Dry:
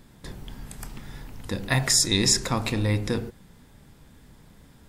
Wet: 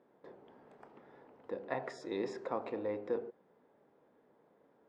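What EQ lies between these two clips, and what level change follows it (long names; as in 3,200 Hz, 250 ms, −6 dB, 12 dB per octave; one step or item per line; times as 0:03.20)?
four-pole ladder band-pass 580 Hz, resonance 35%
+4.0 dB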